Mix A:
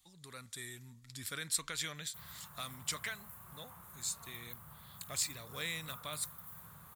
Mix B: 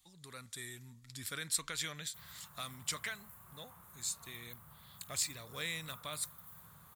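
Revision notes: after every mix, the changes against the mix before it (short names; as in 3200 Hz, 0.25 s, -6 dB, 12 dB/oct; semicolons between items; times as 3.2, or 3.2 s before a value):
background -3.5 dB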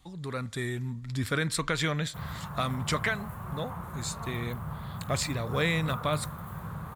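background +4.0 dB; master: remove pre-emphasis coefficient 0.9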